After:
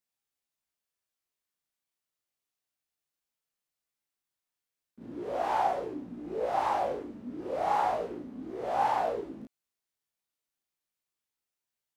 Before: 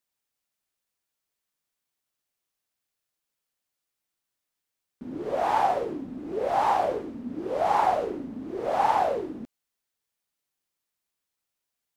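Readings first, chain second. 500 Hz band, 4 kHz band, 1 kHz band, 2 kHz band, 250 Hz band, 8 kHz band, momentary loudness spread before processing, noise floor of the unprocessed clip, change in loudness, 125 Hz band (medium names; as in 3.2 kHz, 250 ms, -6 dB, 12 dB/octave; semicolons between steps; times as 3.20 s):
-5.0 dB, -5.0 dB, -5.0 dB, -4.5 dB, -5.5 dB, no reading, 13 LU, -85 dBFS, -5.0 dB, -5.0 dB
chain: chorus 0.35 Hz, delay 16 ms, depth 3.9 ms; reverse echo 34 ms -4 dB; trim -3.5 dB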